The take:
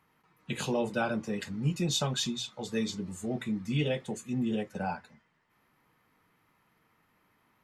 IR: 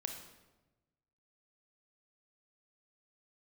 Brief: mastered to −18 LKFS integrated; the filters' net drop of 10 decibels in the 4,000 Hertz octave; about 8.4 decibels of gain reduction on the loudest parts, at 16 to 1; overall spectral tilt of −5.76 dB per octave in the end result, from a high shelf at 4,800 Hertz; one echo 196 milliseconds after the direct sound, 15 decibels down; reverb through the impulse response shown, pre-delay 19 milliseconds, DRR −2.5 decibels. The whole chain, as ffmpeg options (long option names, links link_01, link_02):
-filter_complex "[0:a]equalizer=frequency=4000:width_type=o:gain=-9,highshelf=frequency=4800:gain=-6.5,acompressor=threshold=-31dB:ratio=16,aecho=1:1:196:0.178,asplit=2[link_01][link_02];[1:a]atrim=start_sample=2205,adelay=19[link_03];[link_02][link_03]afir=irnorm=-1:irlink=0,volume=3dB[link_04];[link_01][link_04]amix=inputs=2:normalize=0,volume=15dB"